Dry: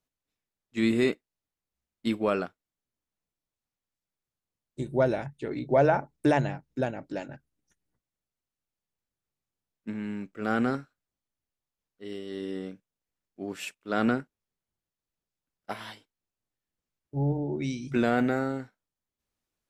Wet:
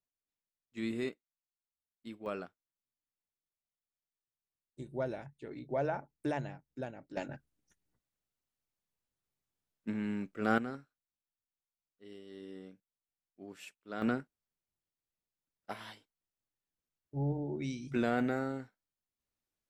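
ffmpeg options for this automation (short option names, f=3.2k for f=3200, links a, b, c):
-af "asetnsamples=n=441:p=0,asendcmd='1.09 volume volume -18.5dB;2.26 volume volume -12dB;7.17 volume volume -1.5dB;10.58 volume volume -13dB;14.02 volume volume -6.5dB',volume=-12dB"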